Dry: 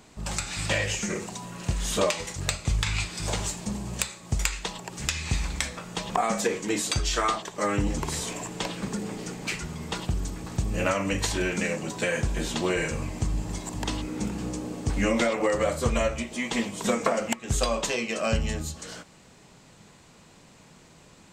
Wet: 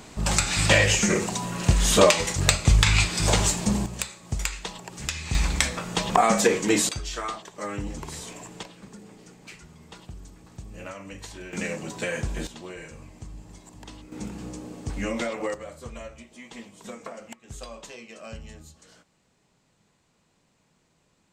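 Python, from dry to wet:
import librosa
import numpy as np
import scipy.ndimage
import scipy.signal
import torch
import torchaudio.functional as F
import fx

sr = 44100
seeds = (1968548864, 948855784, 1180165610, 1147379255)

y = fx.gain(x, sr, db=fx.steps((0.0, 8.0), (3.86, -2.0), (5.35, 6.0), (6.89, -6.5), (8.63, -13.5), (11.53, -2.5), (12.47, -13.5), (14.12, -5.0), (15.54, -14.5)))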